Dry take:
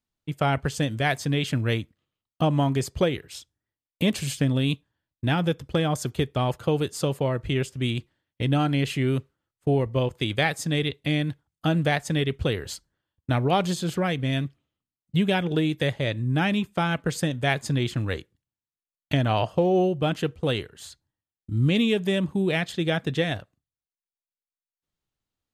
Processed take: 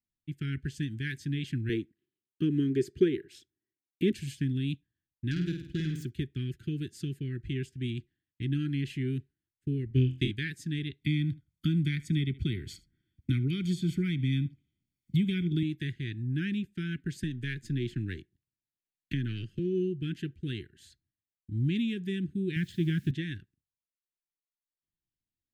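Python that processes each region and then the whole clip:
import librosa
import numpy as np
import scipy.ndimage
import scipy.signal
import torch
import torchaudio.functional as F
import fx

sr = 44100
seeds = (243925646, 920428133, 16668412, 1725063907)

y = fx.chain(x, sr, fx.highpass(hz=180.0, slope=6),
    fx.small_body(hz=(420.0, 1000.0), ring_ms=20, db=17), at=(1.69, 4.12))
y = fx.chain(y, sr, fx.self_delay(depth_ms=0.13),
    fx.room_flutter(wall_m=8.7, rt60_s=0.54), at=(5.31, 6.05))
y = fx.chain(y, sr, fx.transient(attack_db=8, sustain_db=-4),
    fx.room_flutter(wall_m=4.0, rt60_s=0.3), at=(9.88, 10.31))
y = fx.chain(y, sr, fx.comb(ms=0.9, depth=0.79),
    fx.echo_single(ms=75, db=-22.0),
    fx.band_squash(depth_pct=70), at=(11.01, 15.63))
y = fx.chain(y, sr, fx.halfwave_gain(db=-3.0),
    fx.peak_eq(hz=620.0, db=14.5, octaves=0.39),
    fx.band_squash(depth_pct=40), at=(17.23, 19.59))
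y = fx.chain(y, sr, fx.peak_eq(hz=100.0, db=10.5, octaves=2.0),
    fx.quant_dither(seeds[0], bits=8, dither='triangular'),
    fx.doppler_dist(depth_ms=0.1), at=(22.56, 23.11))
y = scipy.signal.sosfilt(scipy.signal.cheby1(4, 1.0, [370.0, 1600.0], 'bandstop', fs=sr, output='sos'), y)
y = fx.high_shelf(y, sr, hz=2300.0, db=-9.0)
y = F.gain(torch.from_numpy(y), -6.5).numpy()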